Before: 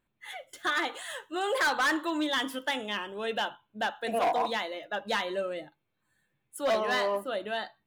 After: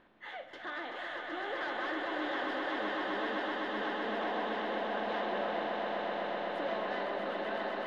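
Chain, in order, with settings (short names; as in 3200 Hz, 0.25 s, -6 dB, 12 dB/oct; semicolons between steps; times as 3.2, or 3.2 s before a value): per-bin compression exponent 0.6; limiter -24 dBFS, peak gain reduction 9 dB; air absorption 260 m; swelling echo 0.127 s, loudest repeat 8, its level -6 dB; gain -7.5 dB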